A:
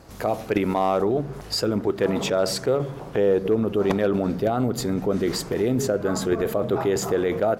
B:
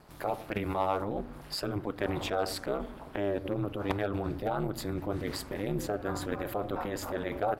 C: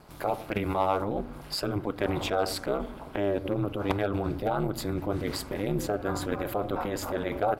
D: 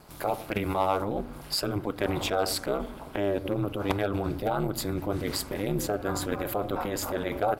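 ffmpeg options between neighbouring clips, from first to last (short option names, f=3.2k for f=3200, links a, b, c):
-af "equalizer=f=100:t=o:w=0.67:g=-12,equalizer=f=400:t=o:w=0.67:g=-9,equalizer=f=6.3k:t=o:w=0.67:g=-9,aeval=exprs='val(0)*sin(2*PI*100*n/s)':c=same,volume=-3dB"
-af "bandreject=f=1.8k:w=14,volume=3.5dB"
-af "highshelf=f=4.8k:g=7"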